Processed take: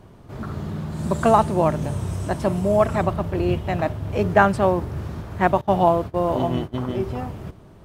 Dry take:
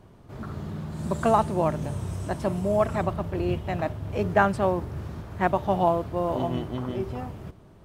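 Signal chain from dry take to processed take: 5.61–6.94 s: gate -31 dBFS, range -19 dB; trim +5 dB

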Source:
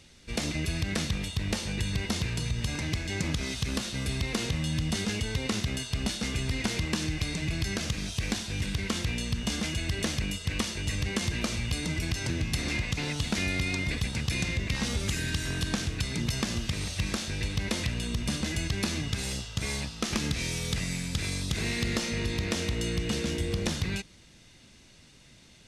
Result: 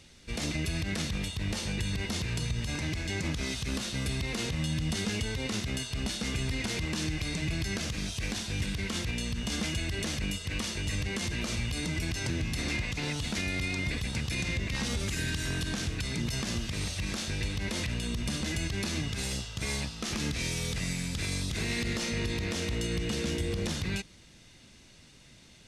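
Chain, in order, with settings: peak limiter -22 dBFS, peak gain reduction 7.5 dB

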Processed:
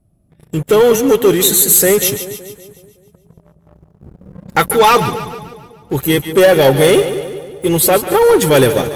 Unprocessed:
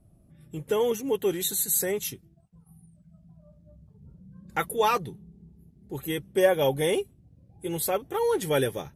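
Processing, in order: waveshaping leveller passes 3; two-band feedback delay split 740 Hz, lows 188 ms, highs 144 ms, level -11 dB; trim +6.5 dB

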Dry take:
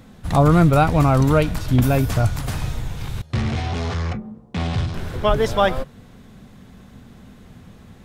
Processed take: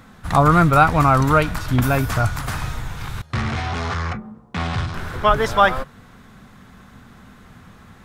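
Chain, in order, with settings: FFT filter 550 Hz 0 dB, 1.3 kHz +11 dB, 2.9 kHz +3 dB; trim -2 dB

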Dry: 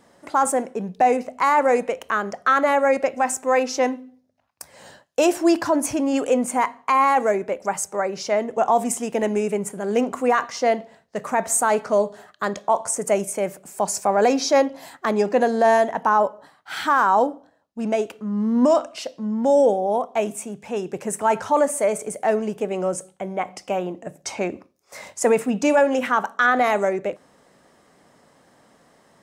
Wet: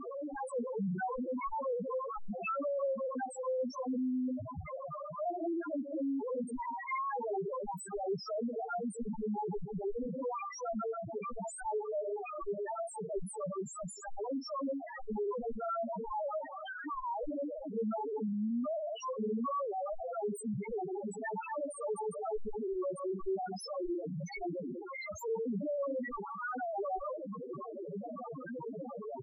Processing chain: one-bit comparator; harmony voices -7 st -6 dB, +12 st -1 dB; loudest bins only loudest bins 1; trim -6 dB

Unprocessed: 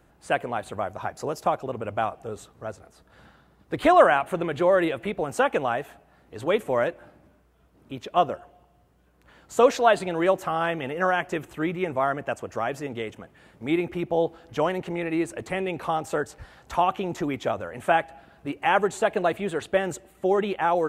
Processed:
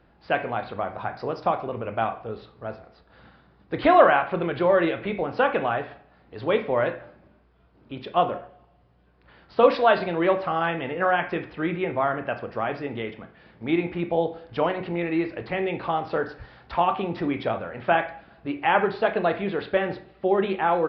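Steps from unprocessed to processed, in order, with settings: on a send at -6 dB: reverberation RT60 0.50 s, pre-delay 16 ms; on the sum: resampled via 11.025 kHz

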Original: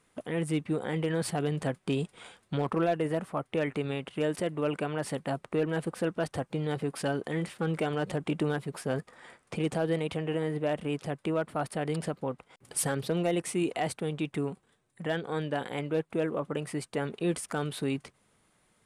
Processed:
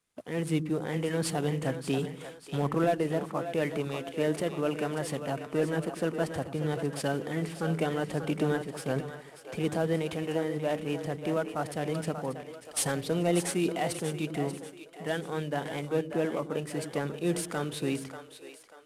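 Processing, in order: CVSD coder 64 kbps; two-band feedback delay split 370 Hz, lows 97 ms, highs 588 ms, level -8 dB; three bands expanded up and down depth 40%

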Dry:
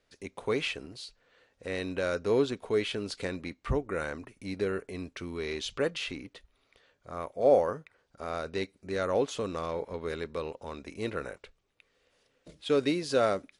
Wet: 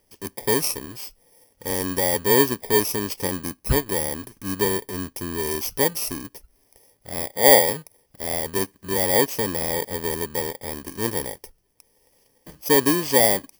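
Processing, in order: bit-reversed sample order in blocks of 32 samples; trim +8.5 dB

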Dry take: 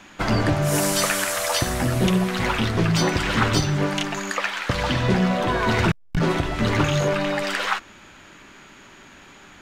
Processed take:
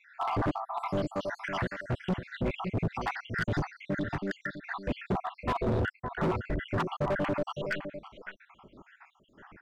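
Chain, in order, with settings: random holes in the spectrogram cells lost 79%; low-pass 1.6 kHz 12 dB/octave; on a send: delay 561 ms -11.5 dB; on the sum: overload inside the chain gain 25 dB; loudspeaker Doppler distortion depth 0.14 ms

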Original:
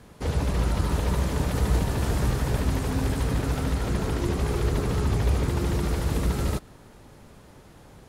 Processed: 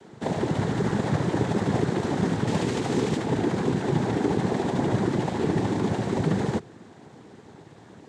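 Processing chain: tracing distortion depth 0.24 ms; steep high-pass 160 Hz; bass shelf 400 Hz +10 dB; band-stop 5.3 kHz, Q 6.6; 2.47–3.17 s: peaking EQ 3.8 kHz +11 dB 0.57 oct; noise-vocoded speech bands 6

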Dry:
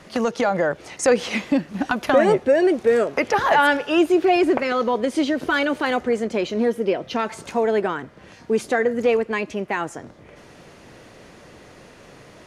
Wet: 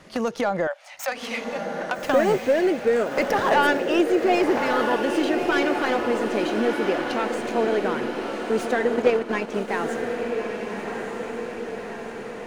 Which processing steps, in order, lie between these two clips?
tracing distortion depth 0.1 ms; 0.67–1.99 s: rippled Chebyshev high-pass 550 Hz, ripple 3 dB; on a send: echo that smears into a reverb 1255 ms, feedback 62%, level -5 dB; 8.96–9.68 s: on the sum: transient shaper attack +6 dB, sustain -6 dB; trim -3.5 dB

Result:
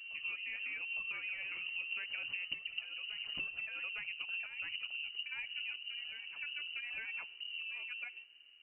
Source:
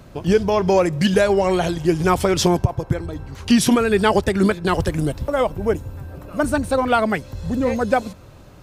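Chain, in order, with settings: Doppler pass-by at 2.75 s, 16 m/s, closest 2.5 m; bass shelf 280 Hz +10.5 dB; compression 12:1, threshold -43 dBFS, peak gain reduction 36.5 dB; frequency inversion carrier 2.9 kHz; reverse echo 858 ms -8 dB; simulated room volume 3800 m³, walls furnished, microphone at 0.31 m; trim +3.5 dB

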